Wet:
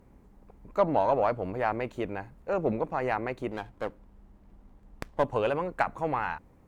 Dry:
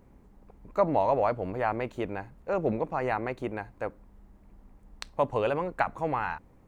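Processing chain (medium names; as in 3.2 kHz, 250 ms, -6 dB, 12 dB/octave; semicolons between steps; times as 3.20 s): Chebyshev shaper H 6 -31 dB, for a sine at -10 dBFS; 3.51–5.24 s: sliding maximum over 9 samples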